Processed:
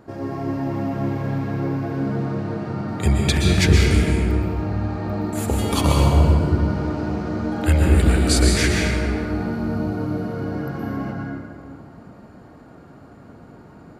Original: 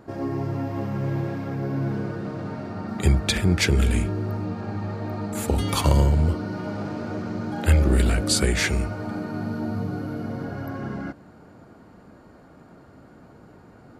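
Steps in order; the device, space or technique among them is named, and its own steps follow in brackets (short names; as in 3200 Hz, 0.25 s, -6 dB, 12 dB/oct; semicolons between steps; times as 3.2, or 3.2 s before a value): stairwell (reverb RT60 2.2 s, pre-delay 0.114 s, DRR -1.5 dB)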